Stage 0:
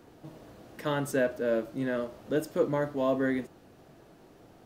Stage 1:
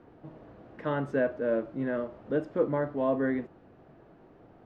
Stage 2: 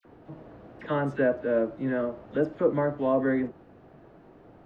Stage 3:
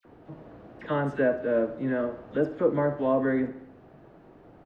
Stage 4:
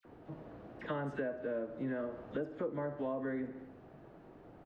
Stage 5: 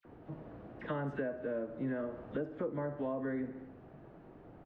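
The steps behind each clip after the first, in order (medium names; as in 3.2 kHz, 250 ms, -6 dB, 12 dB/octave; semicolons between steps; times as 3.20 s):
low-pass 1.9 kHz 12 dB/octave
phase dispersion lows, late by 51 ms, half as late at 1.9 kHz; trim +3 dB
feedback delay 69 ms, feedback 56%, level -15 dB
compression 6:1, threshold -31 dBFS, peak gain reduction 13 dB; trim -3.5 dB
tone controls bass +3 dB, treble -8 dB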